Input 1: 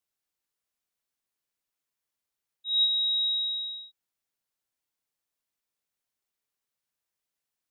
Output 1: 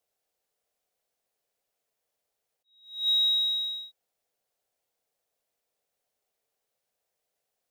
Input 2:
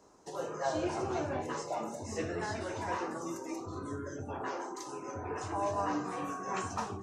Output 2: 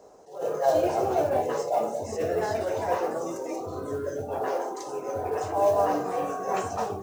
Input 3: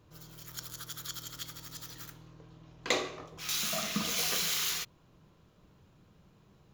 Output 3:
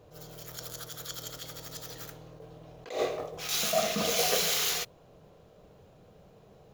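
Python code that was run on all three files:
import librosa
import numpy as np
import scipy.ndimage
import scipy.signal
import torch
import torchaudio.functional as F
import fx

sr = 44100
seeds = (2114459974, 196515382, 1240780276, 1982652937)

y = fx.band_shelf(x, sr, hz=570.0, db=11.0, octaves=1.1)
y = fx.mod_noise(y, sr, seeds[0], snr_db=29)
y = fx.attack_slew(y, sr, db_per_s=130.0)
y = y * 10.0 ** (3.0 / 20.0)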